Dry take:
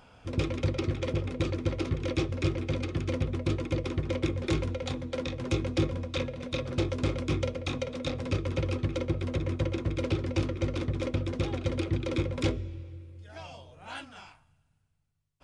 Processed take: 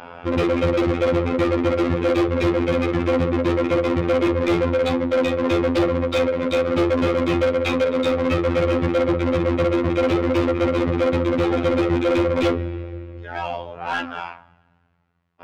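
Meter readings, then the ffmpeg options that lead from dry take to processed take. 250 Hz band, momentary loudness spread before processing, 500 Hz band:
+12.0 dB, 12 LU, +15.5 dB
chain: -filter_complex "[0:a]adynamicsmooth=sensitivity=5:basefreq=2100,afftfilt=real='hypot(re,im)*cos(PI*b)':imag='0':win_size=2048:overlap=0.75,asplit=2[link_01][link_02];[link_02]highpass=frequency=720:poles=1,volume=32dB,asoftclip=type=tanh:threshold=-11dB[link_03];[link_01][link_03]amix=inputs=2:normalize=0,lowpass=frequency=2600:poles=1,volume=-6dB,volume=2dB"

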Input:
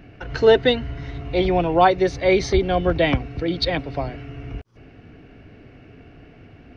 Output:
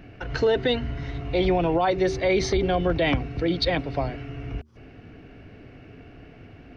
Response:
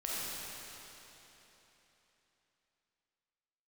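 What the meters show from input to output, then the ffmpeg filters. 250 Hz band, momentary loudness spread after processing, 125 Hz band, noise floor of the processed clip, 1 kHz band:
−2.5 dB, 12 LU, −2.0 dB, −48 dBFS, −6.0 dB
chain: -af "bandreject=frequency=76.35:width_type=h:width=4,bandreject=frequency=152.7:width_type=h:width=4,bandreject=frequency=229.05:width_type=h:width=4,bandreject=frequency=305.4:width_type=h:width=4,bandreject=frequency=381.75:width_type=h:width=4,alimiter=limit=-13.5dB:level=0:latency=1:release=33"

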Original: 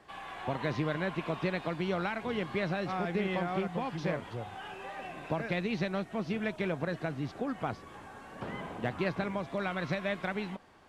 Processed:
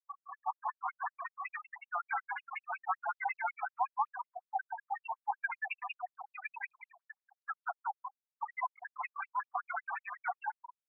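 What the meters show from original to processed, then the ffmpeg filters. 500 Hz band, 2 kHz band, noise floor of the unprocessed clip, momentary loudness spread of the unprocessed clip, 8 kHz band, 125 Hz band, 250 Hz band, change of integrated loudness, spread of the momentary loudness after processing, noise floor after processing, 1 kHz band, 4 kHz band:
−18.0 dB, −2.0 dB, −50 dBFS, 10 LU, can't be measured, below −40 dB, below −40 dB, −5.0 dB, 9 LU, below −85 dBFS, +2.5 dB, below −15 dB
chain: -filter_complex "[0:a]aeval=exprs='clip(val(0),-1,0.0211)':channel_layout=same,highpass=450,asplit=6[link_01][link_02][link_03][link_04][link_05][link_06];[link_02]adelay=196,afreqshift=120,volume=-4dB[link_07];[link_03]adelay=392,afreqshift=240,volume=-11.3dB[link_08];[link_04]adelay=588,afreqshift=360,volume=-18.7dB[link_09];[link_05]adelay=784,afreqshift=480,volume=-26dB[link_10];[link_06]adelay=980,afreqshift=600,volume=-33.3dB[link_11];[link_01][link_07][link_08][link_09][link_10][link_11]amix=inputs=6:normalize=0,afftfilt=real='re*gte(hypot(re,im),0.0355)':imag='im*gte(hypot(re,im),0.0355)':win_size=1024:overlap=0.75,dynaudnorm=framelen=480:gausssize=11:maxgain=7.5dB,equalizer=frequency=3300:width_type=o:width=1:gain=-7,alimiter=level_in=4.5dB:limit=-24dB:level=0:latency=1:release=93,volume=-4.5dB,afftfilt=real='re*between(b*sr/1024,960*pow(5500/960,0.5+0.5*sin(2*PI*5.4*pts/sr))/1.41,960*pow(5500/960,0.5+0.5*sin(2*PI*5.4*pts/sr))*1.41)':imag='im*between(b*sr/1024,960*pow(5500/960,0.5+0.5*sin(2*PI*5.4*pts/sr))/1.41,960*pow(5500/960,0.5+0.5*sin(2*PI*5.4*pts/sr))*1.41)':win_size=1024:overlap=0.75,volume=9dB"

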